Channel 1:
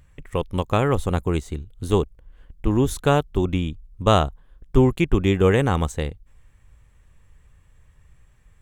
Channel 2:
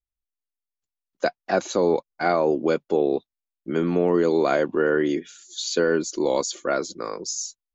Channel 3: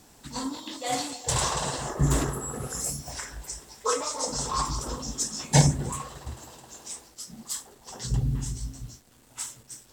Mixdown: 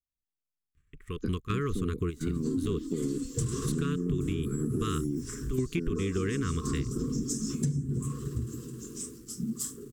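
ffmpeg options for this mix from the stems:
-filter_complex "[0:a]alimiter=limit=-9dB:level=0:latency=1,agate=range=-9dB:threshold=-52dB:ratio=16:detection=peak,adelay=750,volume=-3.5dB[a];[1:a]asubboost=boost=10.5:cutoff=170,volume=-17dB,asplit=2[b][c];[2:a]adelay=2100,volume=-5dB[d];[c]apad=whole_len=413138[e];[a][e]sidechaingate=range=-13dB:threshold=-54dB:ratio=16:detection=peak[f];[b][d]amix=inputs=2:normalize=0,equalizer=f=125:t=o:w=1:g=11,equalizer=f=250:t=o:w=1:g=10,equalizer=f=500:t=o:w=1:g=8,equalizer=f=1k:t=o:w=1:g=-4,equalizer=f=2k:t=o:w=1:g=-10,equalizer=f=4k:t=o:w=1:g=-9,acompressor=threshold=-24dB:ratio=2.5,volume=0dB[g];[f][g]amix=inputs=2:normalize=0,acontrast=64,asuperstop=centerf=700:order=12:qfactor=1.1,acompressor=threshold=-28dB:ratio=5"

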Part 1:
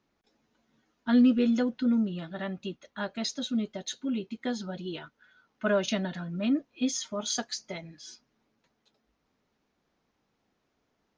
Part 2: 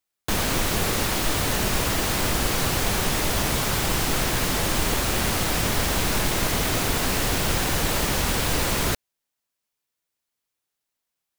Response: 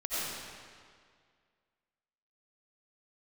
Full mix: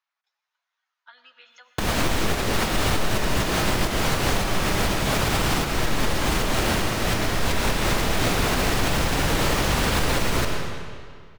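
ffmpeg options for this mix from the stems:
-filter_complex "[0:a]highpass=f=960:w=0.5412,highpass=f=960:w=1.3066,acompressor=threshold=-41dB:ratio=6,volume=-5.5dB,asplit=3[a][b][c];[b]volume=-14.5dB[d];[1:a]adelay=1500,volume=2.5dB,asplit=2[e][f];[f]volume=-11dB[g];[c]apad=whole_len=568285[h];[e][h]sidechaincompress=threshold=-56dB:ratio=8:attack=16:release=158[i];[2:a]atrim=start_sample=2205[j];[d][g]amix=inputs=2:normalize=0[k];[k][j]afir=irnorm=-1:irlink=0[l];[a][i][l]amix=inputs=3:normalize=0,highshelf=f=6.6k:g=-9.5,alimiter=limit=-11.5dB:level=0:latency=1:release=75"

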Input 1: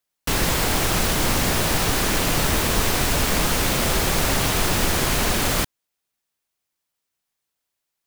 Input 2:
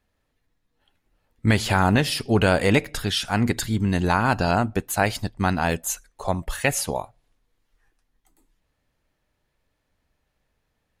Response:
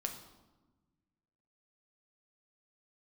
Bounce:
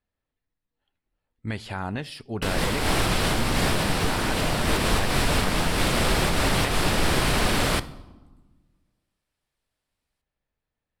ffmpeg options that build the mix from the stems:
-filter_complex "[0:a]adelay=2150,volume=-3.5dB,asplit=2[a][b];[b]volume=-6dB[c];[1:a]volume=-12dB,asplit=2[d][e];[e]apad=whole_len=450468[f];[a][f]sidechaincompress=threshold=-35dB:ratio=8:attack=22:release=141[g];[2:a]atrim=start_sample=2205[h];[c][h]afir=irnorm=-1:irlink=0[i];[g][d][i]amix=inputs=3:normalize=0,lowpass=9.1k,equalizer=f=6.5k:w=2.9:g=-8"

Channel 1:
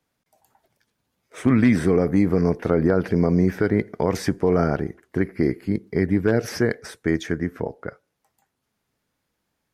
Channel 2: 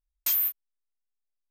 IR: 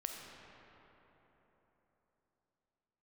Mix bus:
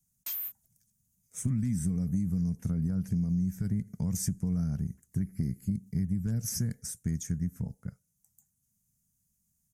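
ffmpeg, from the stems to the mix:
-filter_complex "[0:a]firequalizer=gain_entry='entry(190,0);entry(330,-27);entry(4100,-18);entry(6500,6)':delay=0.05:min_phase=1,acompressor=threshold=-28dB:ratio=6,volume=1.5dB[a];[1:a]volume=-10.5dB[b];[a][b]amix=inputs=2:normalize=0"

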